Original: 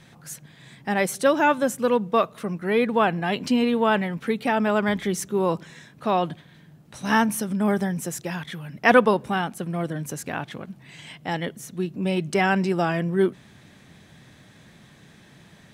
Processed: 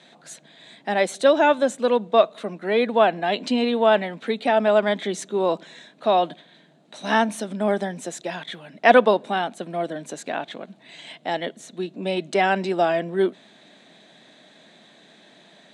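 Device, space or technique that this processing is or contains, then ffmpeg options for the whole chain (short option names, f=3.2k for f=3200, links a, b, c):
television speaker: -af "highpass=f=220:w=0.5412,highpass=f=220:w=1.3066,equalizer=f=650:t=q:w=4:g=9,equalizer=f=1.2k:t=q:w=4:g=-3,equalizer=f=3.8k:t=q:w=4:g=9,equalizer=f=5.4k:t=q:w=4:g=-6,lowpass=f=8.4k:w=0.5412,lowpass=f=8.4k:w=1.3066"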